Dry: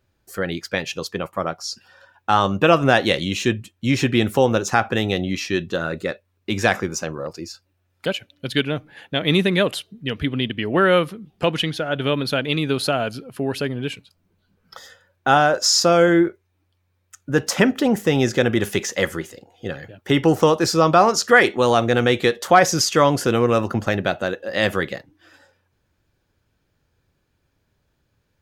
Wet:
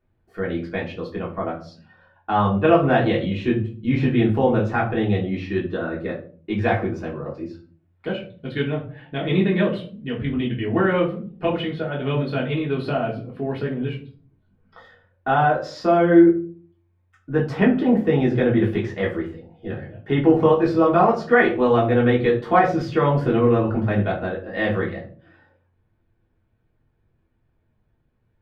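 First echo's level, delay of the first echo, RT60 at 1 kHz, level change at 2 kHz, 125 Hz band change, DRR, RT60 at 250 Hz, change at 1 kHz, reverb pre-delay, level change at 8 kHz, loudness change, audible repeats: no echo audible, no echo audible, 0.40 s, −5.0 dB, +1.5 dB, −5.0 dB, 0.65 s, −2.5 dB, 3 ms, below −25 dB, −1.5 dB, no echo audible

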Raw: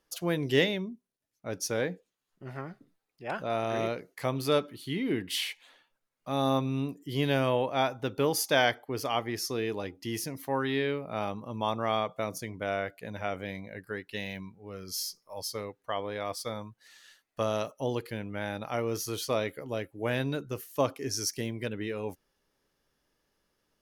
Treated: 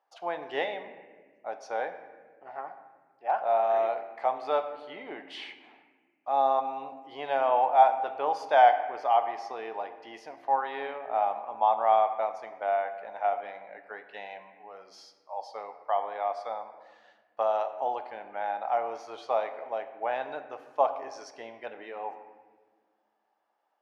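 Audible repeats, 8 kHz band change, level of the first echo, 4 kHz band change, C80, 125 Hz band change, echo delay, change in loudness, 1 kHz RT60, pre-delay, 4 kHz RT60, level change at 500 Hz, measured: no echo audible, below −20 dB, no echo audible, −11.0 dB, 11.5 dB, below −25 dB, no echo audible, +3.0 dB, 1.3 s, 3 ms, 1.0 s, +1.5 dB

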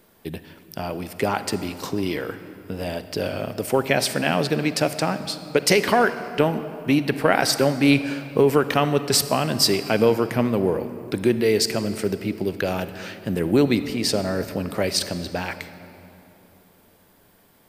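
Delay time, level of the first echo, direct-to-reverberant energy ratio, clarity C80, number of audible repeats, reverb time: no echo audible, no echo audible, 11.5 dB, 12.5 dB, no echo audible, 3.0 s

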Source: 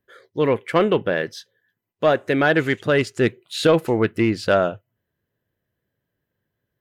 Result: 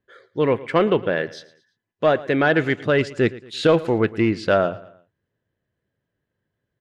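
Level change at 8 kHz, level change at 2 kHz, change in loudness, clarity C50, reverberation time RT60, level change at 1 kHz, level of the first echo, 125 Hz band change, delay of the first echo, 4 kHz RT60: can't be measured, −0.5 dB, 0.0 dB, no reverb audible, no reverb audible, −0.5 dB, −19.0 dB, 0.0 dB, 113 ms, no reverb audible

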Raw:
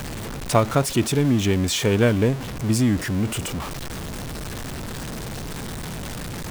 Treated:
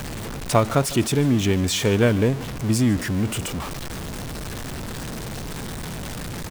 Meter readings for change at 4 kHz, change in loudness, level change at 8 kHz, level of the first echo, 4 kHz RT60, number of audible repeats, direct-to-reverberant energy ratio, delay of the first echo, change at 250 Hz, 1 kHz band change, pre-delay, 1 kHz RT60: 0.0 dB, 0.0 dB, 0.0 dB, −19.0 dB, no reverb audible, 1, no reverb audible, 150 ms, 0.0 dB, 0.0 dB, no reverb audible, no reverb audible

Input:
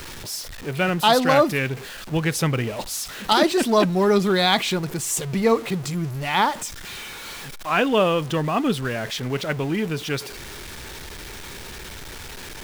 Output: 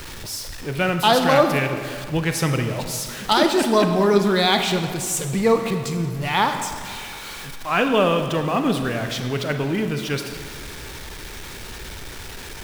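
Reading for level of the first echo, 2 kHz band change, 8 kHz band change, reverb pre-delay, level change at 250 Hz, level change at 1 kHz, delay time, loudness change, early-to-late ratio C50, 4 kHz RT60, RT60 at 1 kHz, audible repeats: no echo audible, +1.0 dB, +0.5 dB, 31 ms, +1.0 dB, +1.0 dB, no echo audible, +1.0 dB, 7.0 dB, 1.3 s, 1.9 s, no echo audible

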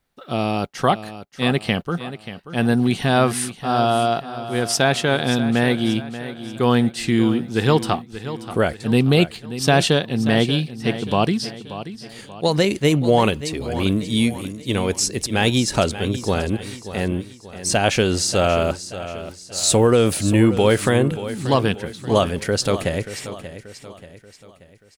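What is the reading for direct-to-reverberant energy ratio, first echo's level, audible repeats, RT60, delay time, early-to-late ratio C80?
no reverb audible, −13.0 dB, 4, no reverb audible, 583 ms, no reverb audible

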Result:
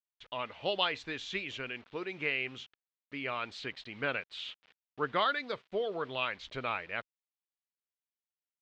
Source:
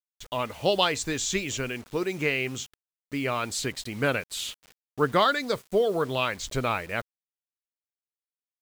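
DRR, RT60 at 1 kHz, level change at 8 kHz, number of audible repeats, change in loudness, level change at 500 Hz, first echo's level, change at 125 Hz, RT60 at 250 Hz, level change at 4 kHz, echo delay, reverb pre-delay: no reverb audible, no reverb audible, below −25 dB, no echo audible, −8.0 dB, −10.0 dB, no echo audible, −14.5 dB, no reverb audible, −6.5 dB, no echo audible, no reverb audible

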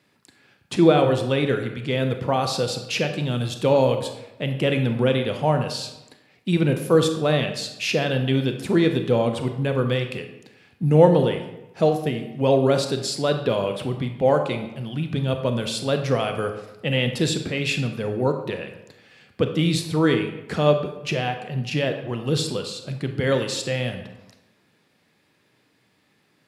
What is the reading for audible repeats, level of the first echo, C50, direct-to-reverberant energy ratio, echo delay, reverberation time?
no echo audible, no echo audible, 8.0 dB, 5.5 dB, no echo audible, 0.95 s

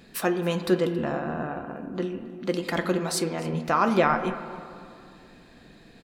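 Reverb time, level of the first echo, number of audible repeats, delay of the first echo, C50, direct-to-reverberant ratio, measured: 2.4 s, −21.0 dB, 1, 274 ms, 9.5 dB, 8.0 dB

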